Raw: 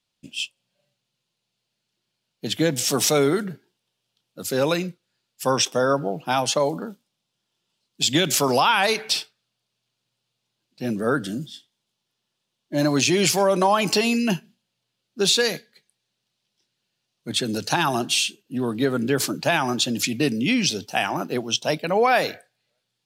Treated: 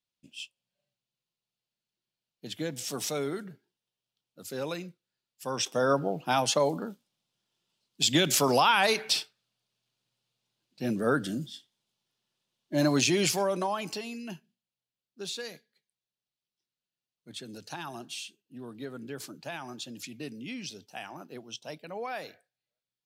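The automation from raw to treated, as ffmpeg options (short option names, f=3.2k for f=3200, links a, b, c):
-af "volume=-4dB,afade=t=in:st=5.5:d=0.42:silence=0.354813,afade=t=out:st=12.89:d=0.76:silence=0.421697,afade=t=out:st=13.65:d=0.4:silence=0.473151"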